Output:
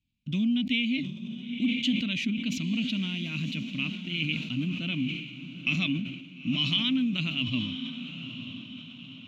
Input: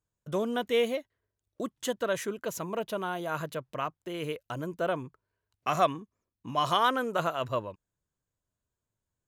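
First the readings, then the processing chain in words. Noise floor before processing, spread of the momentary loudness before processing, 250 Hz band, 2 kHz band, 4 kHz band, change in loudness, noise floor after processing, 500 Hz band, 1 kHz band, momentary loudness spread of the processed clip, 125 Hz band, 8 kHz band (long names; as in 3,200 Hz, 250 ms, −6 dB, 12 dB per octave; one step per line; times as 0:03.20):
below −85 dBFS, 10 LU, +10.0 dB, +5.0 dB, +9.5 dB, +2.0 dB, −46 dBFS, −20.5 dB, −22.5 dB, 12 LU, +8.0 dB, −5.0 dB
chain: drawn EQ curve 140 Hz 0 dB, 260 Hz +11 dB, 410 Hz −28 dB, 810 Hz −30 dB, 1,700 Hz −20 dB, 2,400 Hz +11 dB, 4,200 Hz +2 dB, 10,000 Hz −26 dB
downward compressor 4 to 1, threshold −29 dBFS, peak gain reduction 7 dB
on a send: feedback delay with all-pass diffusion 938 ms, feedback 46%, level −10 dB
on the sum: level that may fall only so fast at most 59 dB per second
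level +5 dB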